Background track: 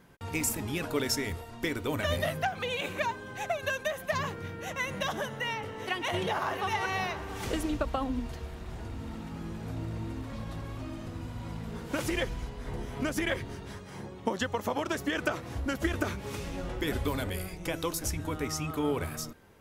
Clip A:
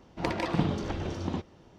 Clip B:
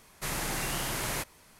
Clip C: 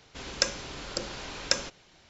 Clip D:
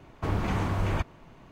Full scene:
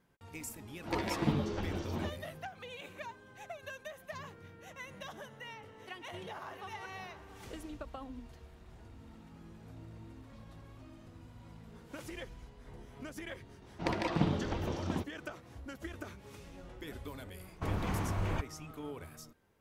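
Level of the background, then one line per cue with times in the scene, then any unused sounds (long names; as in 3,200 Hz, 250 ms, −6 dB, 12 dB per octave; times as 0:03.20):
background track −14 dB
0:00.68: mix in A −1 dB + string-ensemble chorus
0:13.62: mix in A −3 dB
0:17.39: mix in D −6.5 dB
not used: B, C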